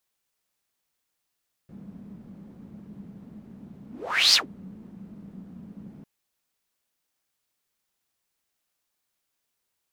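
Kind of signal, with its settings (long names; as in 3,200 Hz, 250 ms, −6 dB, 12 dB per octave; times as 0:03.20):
pass-by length 4.35 s, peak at 0:02.65, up 0.47 s, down 0.13 s, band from 200 Hz, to 4,800 Hz, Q 6.6, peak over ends 27 dB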